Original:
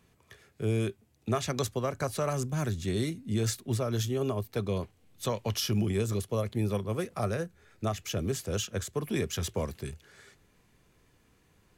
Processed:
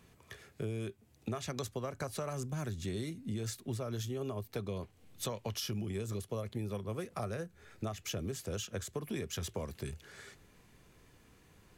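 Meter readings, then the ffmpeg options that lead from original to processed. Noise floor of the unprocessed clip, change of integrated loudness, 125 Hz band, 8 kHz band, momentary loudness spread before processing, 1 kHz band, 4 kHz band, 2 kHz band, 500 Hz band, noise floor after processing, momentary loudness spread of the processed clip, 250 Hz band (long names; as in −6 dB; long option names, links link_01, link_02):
−66 dBFS, −8.0 dB, −8.0 dB, −6.5 dB, 6 LU, −8.0 dB, −6.5 dB, −7.0 dB, −8.0 dB, −65 dBFS, 7 LU, −7.5 dB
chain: -af "acompressor=threshold=-40dB:ratio=4,volume=3dB"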